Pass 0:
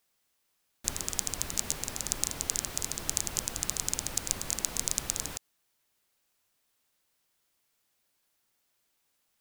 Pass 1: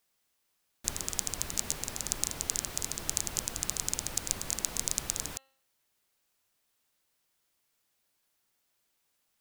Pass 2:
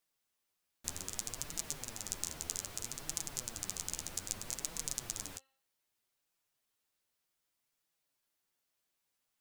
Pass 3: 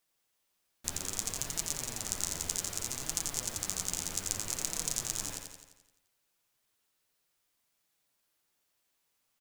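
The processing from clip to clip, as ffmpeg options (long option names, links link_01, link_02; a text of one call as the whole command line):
ffmpeg -i in.wav -af "bandreject=frequency=267.3:width_type=h:width=4,bandreject=frequency=534.6:width_type=h:width=4,bandreject=frequency=801.9:width_type=h:width=4,bandreject=frequency=1069.2:width_type=h:width=4,bandreject=frequency=1336.5:width_type=h:width=4,bandreject=frequency=1603.8:width_type=h:width=4,bandreject=frequency=1871.1:width_type=h:width=4,bandreject=frequency=2138.4:width_type=h:width=4,bandreject=frequency=2405.7:width_type=h:width=4,bandreject=frequency=2673:width_type=h:width=4,bandreject=frequency=2940.3:width_type=h:width=4,bandreject=frequency=3207.6:width_type=h:width=4,bandreject=frequency=3474.9:width_type=h:width=4,bandreject=frequency=3742.2:width_type=h:width=4,bandreject=frequency=4009.5:width_type=h:width=4,bandreject=frequency=4276.8:width_type=h:width=4,volume=-1dB" out.wav
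ffmpeg -i in.wav -af "flanger=delay=5.8:depth=7:regen=22:speed=0.63:shape=triangular,volume=-3.5dB" out.wav
ffmpeg -i in.wav -af "aecho=1:1:86|172|258|344|430|516|602|688:0.562|0.321|0.183|0.104|0.0594|0.0338|0.0193|0.011,volume=4dB" out.wav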